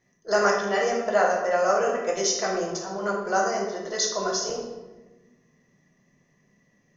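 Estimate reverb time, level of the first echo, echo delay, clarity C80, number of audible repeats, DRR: 1.2 s, none, none, 6.0 dB, none, -2.0 dB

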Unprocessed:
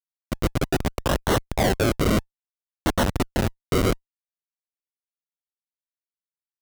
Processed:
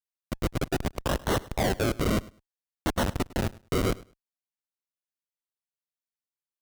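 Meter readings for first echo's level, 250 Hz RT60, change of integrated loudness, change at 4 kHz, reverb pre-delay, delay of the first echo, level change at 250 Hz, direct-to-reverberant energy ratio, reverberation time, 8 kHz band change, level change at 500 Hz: -21.0 dB, none, -5.0 dB, -5.0 dB, none, 0.103 s, -5.0 dB, none, none, -5.0 dB, -5.0 dB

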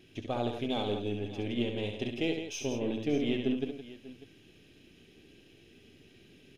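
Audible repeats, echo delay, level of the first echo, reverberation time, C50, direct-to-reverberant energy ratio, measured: 3, 67 ms, -5.5 dB, none, none, none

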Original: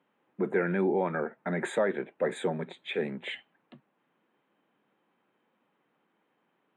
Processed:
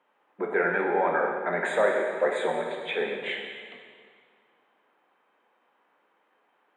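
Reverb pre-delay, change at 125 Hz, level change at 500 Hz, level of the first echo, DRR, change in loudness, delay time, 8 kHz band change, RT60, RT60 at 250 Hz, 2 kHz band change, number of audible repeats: 9 ms, -8.0 dB, +4.0 dB, none, 0.0 dB, +4.0 dB, none, +0.5 dB, 1.9 s, 1.9 s, +8.0 dB, none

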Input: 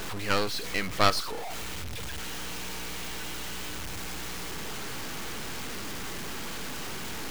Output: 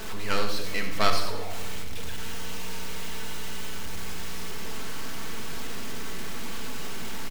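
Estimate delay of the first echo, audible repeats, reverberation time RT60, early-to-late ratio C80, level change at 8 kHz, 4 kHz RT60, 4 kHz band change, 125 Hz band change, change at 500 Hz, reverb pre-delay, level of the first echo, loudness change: 92 ms, 1, 1.3 s, 7.0 dB, -1.0 dB, 0.85 s, -1.0 dB, +0.5 dB, -0.5 dB, 4 ms, -10.5 dB, -0.5 dB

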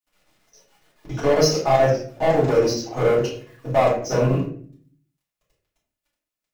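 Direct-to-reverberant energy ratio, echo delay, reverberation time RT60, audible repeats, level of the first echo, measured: -9.0 dB, none, 0.50 s, none, none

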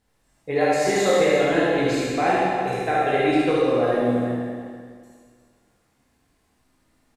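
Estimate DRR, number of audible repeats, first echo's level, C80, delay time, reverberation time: -8.0 dB, 1, -2.5 dB, -2.0 dB, 73 ms, 1.9 s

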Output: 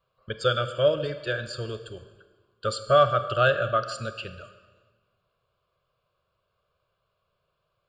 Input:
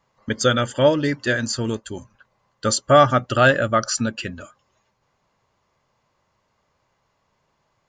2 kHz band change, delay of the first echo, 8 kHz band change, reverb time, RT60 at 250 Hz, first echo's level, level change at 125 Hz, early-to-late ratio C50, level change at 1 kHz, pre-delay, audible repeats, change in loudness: -7.5 dB, none, -18.0 dB, 1.4 s, 1.5 s, none, -7.0 dB, 11.5 dB, -5.5 dB, 28 ms, none, -5.5 dB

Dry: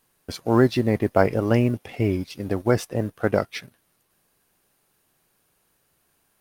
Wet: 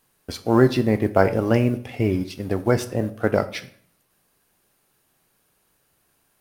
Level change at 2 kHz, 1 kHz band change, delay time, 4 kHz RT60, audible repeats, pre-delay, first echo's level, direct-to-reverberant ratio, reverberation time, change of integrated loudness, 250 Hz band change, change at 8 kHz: +1.5 dB, +1.5 dB, none, 0.45 s, none, 14 ms, none, 11.0 dB, 0.55 s, +1.5 dB, +1.5 dB, +1.5 dB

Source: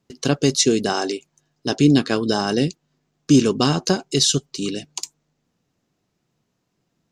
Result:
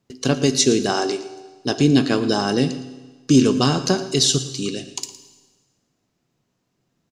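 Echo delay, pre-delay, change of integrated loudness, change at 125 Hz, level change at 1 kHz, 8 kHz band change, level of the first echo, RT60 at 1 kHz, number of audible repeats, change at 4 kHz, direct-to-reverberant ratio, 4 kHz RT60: 0.113 s, 7 ms, 0.0 dB, +0.5 dB, +0.5 dB, +0.5 dB, -16.0 dB, 1.3 s, 1, +0.5 dB, 10.0 dB, 1.3 s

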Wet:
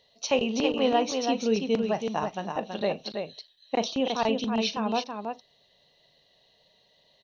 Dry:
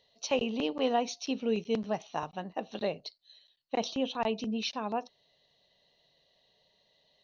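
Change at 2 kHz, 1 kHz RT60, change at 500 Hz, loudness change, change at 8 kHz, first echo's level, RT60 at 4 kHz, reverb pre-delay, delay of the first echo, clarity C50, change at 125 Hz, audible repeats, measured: +6.0 dB, none, +5.5 dB, +5.0 dB, n/a, -15.0 dB, none, none, 40 ms, none, +5.5 dB, 2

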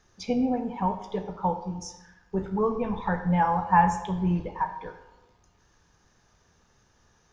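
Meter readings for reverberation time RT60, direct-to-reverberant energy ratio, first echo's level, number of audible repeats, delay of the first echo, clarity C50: 1.1 s, 8.5 dB, none, none, none, 9.5 dB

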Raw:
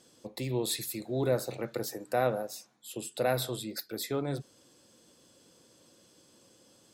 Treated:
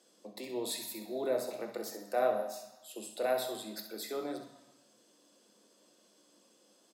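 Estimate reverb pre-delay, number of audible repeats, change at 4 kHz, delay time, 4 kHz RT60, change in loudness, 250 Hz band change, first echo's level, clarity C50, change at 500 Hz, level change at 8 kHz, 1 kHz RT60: 3 ms, 1, -4.5 dB, 65 ms, 1.0 s, -3.5 dB, -6.0 dB, -10.0 dB, 6.0 dB, -2.0 dB, -5.0 dB, 1.1 s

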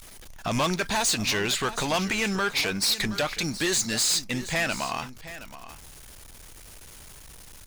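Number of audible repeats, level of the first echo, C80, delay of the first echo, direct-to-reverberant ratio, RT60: 1, -14.5 dB, none, 0.721 s, none, none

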